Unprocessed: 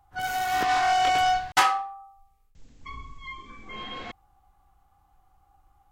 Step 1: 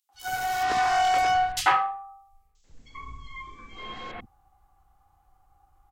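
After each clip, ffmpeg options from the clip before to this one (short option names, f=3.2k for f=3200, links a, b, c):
-filter_complex "[0:a]acrossover=split=240|3100[a][b][c];[b]adelay=90[d];[a]adelay=140[e];[e][d][c]amix=inputs=3:normalize=0"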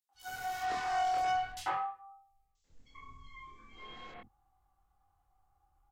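-filter_complex "[0:a]acrossover=split=180|1100[a][b][c];[c]alimiter=limit=-22.5dB:level=0:latency=1:release=277[d];[a][b][d]amix=inputs=3:normalize=0,flanger=delay=22.5:depth=4.7:speed=0.43,volume=-7.5dB"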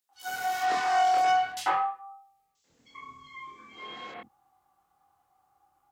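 -af "highpass=200,volume=8dB"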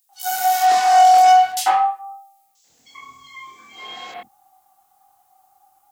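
-af "equalizer=f=750:t=o:w=0.36:g=11.5,crystalizer=i=5.5:c=0"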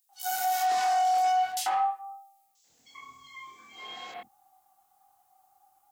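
-af "alimiter=limit=-12.5dB:level=0:latency=1:release=67,volume=-7dB"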